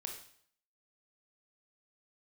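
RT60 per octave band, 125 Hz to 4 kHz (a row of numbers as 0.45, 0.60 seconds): 0.65, 0.60, 0.60, 0.60, 0.60, 0.60 seconds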